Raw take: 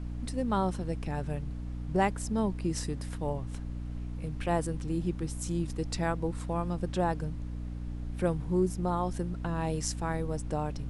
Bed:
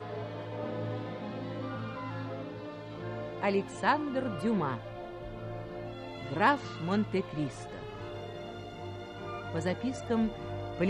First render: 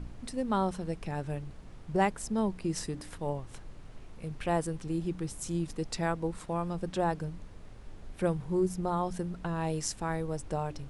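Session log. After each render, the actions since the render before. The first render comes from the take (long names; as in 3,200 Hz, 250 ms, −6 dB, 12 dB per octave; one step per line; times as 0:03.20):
hum removal 60 Hz, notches 5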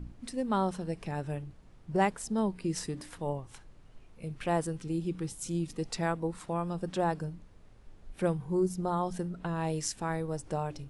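noise reduction from a noise print 8 dB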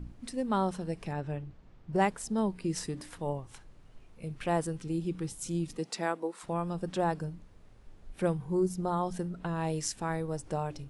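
0:01.13–0:01.93: high-frequency loss of the air 96 metres
0:05.77–0:06.42: high-pass filter 150 Hz → 350 Hz 24 dB per octave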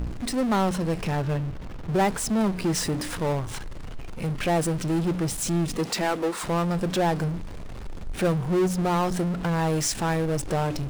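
running median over 3 samples
power curve on the samples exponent 0.5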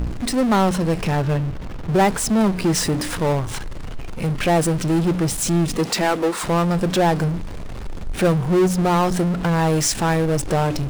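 level +6 dB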